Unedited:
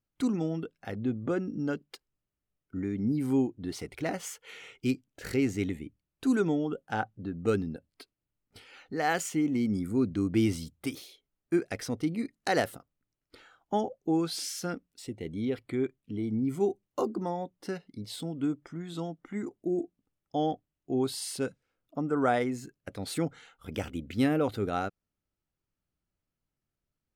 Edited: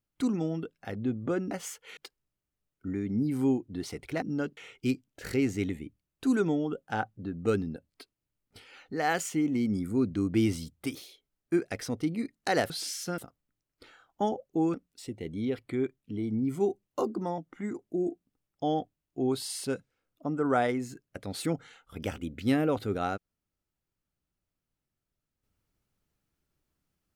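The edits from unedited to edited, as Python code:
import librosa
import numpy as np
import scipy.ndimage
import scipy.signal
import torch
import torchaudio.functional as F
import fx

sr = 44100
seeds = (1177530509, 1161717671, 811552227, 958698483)

y = fx.edit(x, sr, fx.swap(start_s=1.51, length_s=0.35, other_s=4.11, other_length_s=0.46),
    fx.move(start_s=14.26, length_s=0.48, to_s=12.7),
    fx.cut(start_s=17.38, length_s=1.72), tone=tone)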